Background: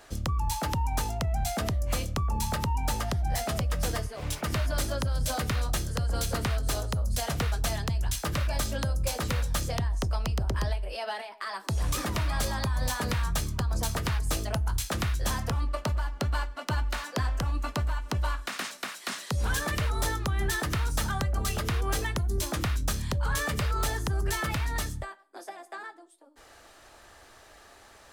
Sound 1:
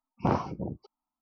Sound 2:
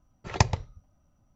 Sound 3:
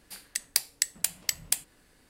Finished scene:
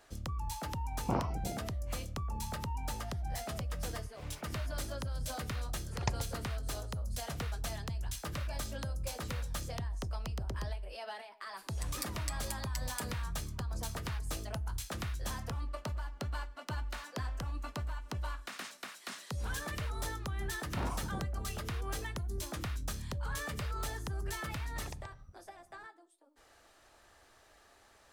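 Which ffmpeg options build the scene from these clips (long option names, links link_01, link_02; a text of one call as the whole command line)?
ffmpeg -i bed.wav -i cue0.wav -i cue1.wav -i cue2.wav -filter_complex "[1:a]asplit=2[link_01][link_02];[2:a]asplit=2[link_03][link_04];[0:a]volume=-9.5dB[link_05];[3:a]aecho=1:1:7.2:0.65[link_06];[link_02]asoftclip=type=tanh:threshold=-29.5dB[link_07];[link_04]acompressor=threshold=-43dB:ratio=6:attack=3.2:release=140:knee=1:detection=peak[link_08];[link_01]atrim=end=1.21,asetpts=PTS-STARTPTS,volume=-7dB,afade=type=in:duration=0.004:curve=hsin,afade=type=out:start_time=1.206:duration=0.004:curve=hsin,adelay=840[link_09];[link_03]atrim=end=1.35,asetpts=PTS-STARTPTS,volume=-12dB,afade=type=in:duration=0.004:curve=hsin,afade=type=out:start_time=1.346:duration=0.004:curve=hsin,adelay=5670[link_10];[link_06]atrim=end=2.09,asetpts=PTS-STARTPTS,volume=-16.5dB,afade=type=in:duration=0.004:curve=hsin,afade=type=out:start_time=2.086:duration=0.004:curve=hsin,adelay=505386S[link_11];[link_07]atrim=end=1.21,asetpts=PTS-STARTPTS,volume=-5dB,afade=type=in:duration=0.004:curve=hsin,afade=type=out:start_time=1.206:duration=0.004:curve=hsin,adelay=904932S[link_12];[link_08]atrim=end=1.35,asetpts=PTS-STARTPTS,volume=-2dB,afade=type=in:duration=0.004:curve=hsin,afade=type=out:start_time=1.346:duration=0.004:curve=hsin,adelay=24520[link_13];[link_05][link_09][link_10][link_11][link_12][link_13]amix=inputs=6:normalize=0" out.wav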